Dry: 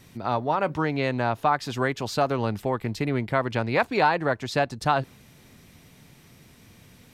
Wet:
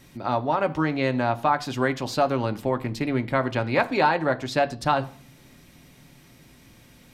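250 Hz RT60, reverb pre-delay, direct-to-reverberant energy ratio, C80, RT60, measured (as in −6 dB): 0.75 s, 3 ms, 7.5 dB, 23.5 dB, 0.50 s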